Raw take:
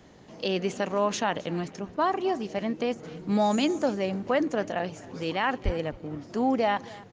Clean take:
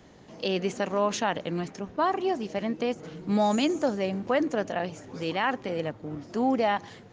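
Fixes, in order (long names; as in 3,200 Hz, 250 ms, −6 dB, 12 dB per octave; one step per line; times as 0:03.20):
0:05.64–0:05.76: high-pass filter 140 Hz 24 dB per octave
echo removal 265 ms −21 dB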